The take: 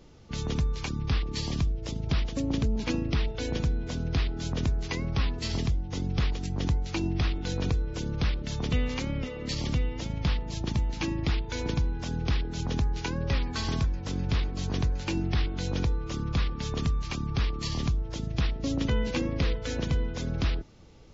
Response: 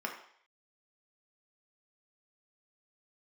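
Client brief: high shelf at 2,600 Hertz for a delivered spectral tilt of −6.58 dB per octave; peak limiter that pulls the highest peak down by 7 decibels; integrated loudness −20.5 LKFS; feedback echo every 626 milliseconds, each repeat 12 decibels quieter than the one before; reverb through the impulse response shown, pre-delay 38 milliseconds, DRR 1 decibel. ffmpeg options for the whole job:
-filter_complex "[0:a]highshelf=frequency=2600:gain=-8,alimiter=limit=-23.5dB:level=0:latency=1,aecho=1:1:626|1252|1878:0.251|0.0628|0.0157,asplit=2[link_01][link_02];[1:a]atrim=start_sample=2205,adelay=38[link_03];[link_02][link_03]afir=irnorm=-1:irlink=0,volume=-5dB[link_04];[link_01][link_04]amix=inputs=2:normalize=0,volume=12dB"

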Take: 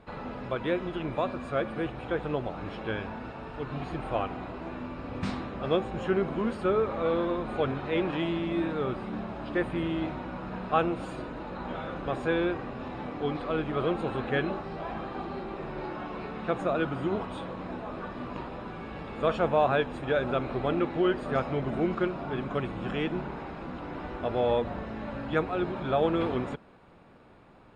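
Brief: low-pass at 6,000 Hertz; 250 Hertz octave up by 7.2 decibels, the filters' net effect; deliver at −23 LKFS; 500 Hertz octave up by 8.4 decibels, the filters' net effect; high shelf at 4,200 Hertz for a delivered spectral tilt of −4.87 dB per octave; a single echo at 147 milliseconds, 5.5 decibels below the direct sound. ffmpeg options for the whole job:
ffmpeg -i in.wav -af "lowpass=6000,equalizer=frequency=250:width_type=o:gain=6.5,equalizer=frequency=500:width_type=o:gain=8.5,highshelf=frequency=4200:gain=-6.5,aecho=1:1:147:0.531" out.wav

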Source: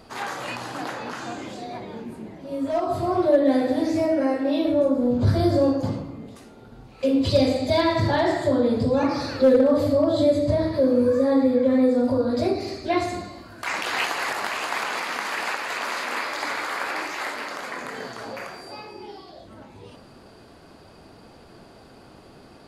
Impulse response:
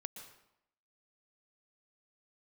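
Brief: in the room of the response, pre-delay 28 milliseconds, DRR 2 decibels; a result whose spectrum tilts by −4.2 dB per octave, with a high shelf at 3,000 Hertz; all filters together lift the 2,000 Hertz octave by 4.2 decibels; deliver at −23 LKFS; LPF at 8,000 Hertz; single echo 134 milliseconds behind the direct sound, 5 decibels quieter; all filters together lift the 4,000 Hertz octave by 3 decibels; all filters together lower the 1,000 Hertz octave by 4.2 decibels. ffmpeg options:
-filter_complex "[0:a]lowpass=8000,equalizer=frequency=1000:width_type=o:gain=-7.5,equalizer=frequency=2000:width_type=o:gain=7.5,highshelf=frequency=3000:gain=-4,equalizer=frequency=4000:width_type=o:gain=5,aecho=1:1:134:0.562,asplit=2[link_01][link_02];[1:a]atrim=start_sample=2205,adelay=28[link_03];[link_02][link_03]afir=irnorm=-1:irlink=0,volume=1dB[link_04];[link_01][link_04]amix=inputs=2:normalize=0,volume=-2.5dB"

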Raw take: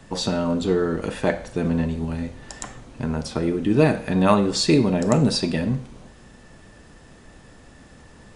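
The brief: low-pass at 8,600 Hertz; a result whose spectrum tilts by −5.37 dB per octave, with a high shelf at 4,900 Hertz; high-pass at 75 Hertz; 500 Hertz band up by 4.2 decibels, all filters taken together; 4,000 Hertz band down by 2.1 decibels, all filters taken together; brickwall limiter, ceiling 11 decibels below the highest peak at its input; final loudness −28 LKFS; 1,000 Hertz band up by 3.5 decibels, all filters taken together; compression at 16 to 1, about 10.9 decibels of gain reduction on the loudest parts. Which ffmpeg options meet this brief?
ffmpeg -i in.wav -af "highpass=75,lowpass=8600,equalizer=frequency=500:width_type=o:gain=4.5,equalizer=frequency=1000:width_type=o:gain=3,equalizer=frequency=4000:width_type=o:gain=-4.5,highshelf=frequency=4900:gain=4,acompressor=threshold=-19dB:ratio=16,volume=0.5dB,alimiter=limit=-17dB:level=0:latency=1" out.wav

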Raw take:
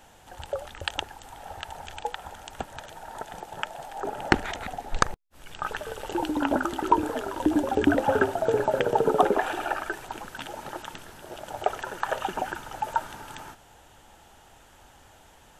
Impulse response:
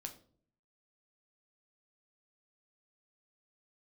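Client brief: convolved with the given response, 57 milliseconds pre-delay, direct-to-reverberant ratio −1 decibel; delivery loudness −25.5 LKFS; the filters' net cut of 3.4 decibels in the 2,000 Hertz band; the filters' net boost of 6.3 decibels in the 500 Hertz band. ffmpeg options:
-filter_complex "[0:a]equalizer=frequency=500:width_type=o:gain=8,equalizer=frequency=2000:width_type=o:gain=-5.5,asplit=2[link_01][link_02];[1:a]atrim=start_sample=2205,adelay=57[link_03];[link_02][link_03]afir=irnorm=-1:irlink=0,volume=4.5dB[link_04];[link_01][link_04]amix=inputs=2:normalize=0,volume=-5dB"

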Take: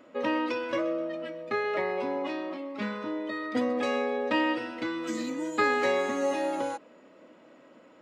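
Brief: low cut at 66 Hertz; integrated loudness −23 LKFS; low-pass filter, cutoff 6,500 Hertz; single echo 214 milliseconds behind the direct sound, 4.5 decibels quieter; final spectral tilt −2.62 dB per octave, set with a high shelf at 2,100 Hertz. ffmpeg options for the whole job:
ffmpeg -i in.wav -af "highpass=66,lowpass=6500,highshelf=frequency=2100:gain=-3,aecho=1:1:214:0.596,volume=5.5dB" out.wav

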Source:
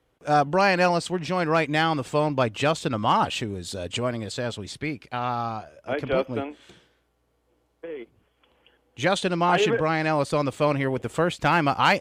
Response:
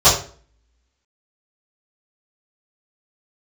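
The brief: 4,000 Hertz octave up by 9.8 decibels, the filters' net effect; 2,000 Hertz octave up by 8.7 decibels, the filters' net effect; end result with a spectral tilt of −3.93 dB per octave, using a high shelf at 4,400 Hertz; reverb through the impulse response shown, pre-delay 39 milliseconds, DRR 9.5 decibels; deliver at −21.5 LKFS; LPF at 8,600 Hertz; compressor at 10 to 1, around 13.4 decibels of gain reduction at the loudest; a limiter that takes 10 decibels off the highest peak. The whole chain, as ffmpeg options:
-filter_complex "[0:a]lowpass=8600,equalizer=frequency=2000:width_type=o:gain=8.5,equalizer=frequency=4000:width_type=o:gain=7.5,highshelf=frequency=4400:gain=4.5,acompressor=threshold=-23dB:ratio=10,alimiter=limit=-20dB:level=0:latency=1,asplit=2[link_01][link_02];[1:a]atrim=start_sample=2205,adelay=39[link_03];[link_02][link_03]afir=irnorm=-1:irlink=0,volume=-34.5dB[link_04];[link_01][link_04]amix=inputs=2:normalize=0,volume=8.5dB"

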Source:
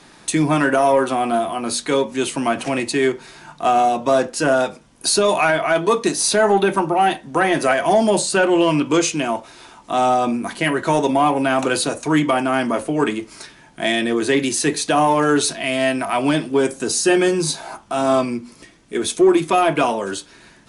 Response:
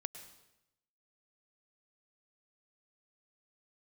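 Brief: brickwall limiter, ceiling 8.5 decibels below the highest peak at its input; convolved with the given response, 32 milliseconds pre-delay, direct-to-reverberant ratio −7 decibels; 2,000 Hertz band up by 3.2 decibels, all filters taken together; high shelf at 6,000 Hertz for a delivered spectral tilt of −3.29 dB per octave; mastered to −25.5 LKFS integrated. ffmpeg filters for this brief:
-filter_complex "[0:a]equalizer=frequency=2000:width_type=o:gain=3.5,highshelf=frequency=6000:gain=7.5,alimiter=limit=-10dB:level=0:latency=1,asplit=2[link_01][link_02];[1:a]atrim=start_sample=2205,adelay=32[link_03];[link_02][link_03]afir=irnorm=-1:irlink=0,volume=9dB[link_04];[link_01][link_04]amix=inputs=2:normalize=0,volume=-13.5dB"

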